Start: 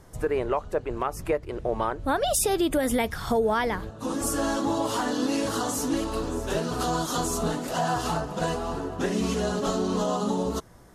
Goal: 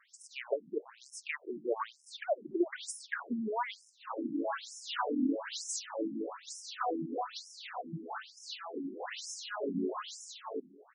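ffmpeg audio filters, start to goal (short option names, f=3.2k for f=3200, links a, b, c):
-filter_complex "[0:a]asplit=2[a][b];[b]adelay=1633,volume=-23dB,highshelf=f=4k:g=-36.7[c];[a][c]amix=inputs=2:normalize=0,acrossover=split=220|1700|3300[d][e][f][g];[f]acontrast=52[h];[d][e][h][g]amix=inputs=4:normalize=0,acrusher=bits=5:mode=log:mix=0:aa=0.000001,asettb=1/sr,asplit=3[i][j][k];[i]atrim=end=7.364[l];[j]atrim=start=7.36:end=8.74,asetpts=PTS-STARTPTS,afade=t=in:d=0.004:c=qsin,afade=t=out:st=1.376:d=0.004:c=qsin,equalizer=f=125:t=o:w=1:g=10,equalizer=f=250:t=o:w=1:g=-4,equalizer=f=500:t=o:w=1:g=-9,equalizer=f=1k:t=o:w=1:g=-5,equalizer=f=4k:t=o:w=1:g=8,equalizer=f=8k:t=o:w=1:g=-11[m];[k]atrim=start=8.736[n];[l][m]acrossfade=d=0.004:c1=hsin:c2=qsin[o];[o][n]acrossfade=d=0.004:c1=qsin:c2=hsin,afftfilt=real='re*between(b*sr/1024,240*pow(7400/240,0.5+0.5*sin(2*PI*1.1*pts/sr))/1.41,240*pow(7400/240,0.5+0.5*sin(2*PI*1.1*pts/sr))*1.41)':imag='im*between(b*sr/1024,240*pow(7400/240,0.5+0.5*sin(2*PI*1.1*pts/sr))/1.41,240*pow(7400/240,0.5+0.5*sin(2*PI*1.1*pts/sr))*1.41)':win_size=1024:overlap=0.75,volume=-2.5dB"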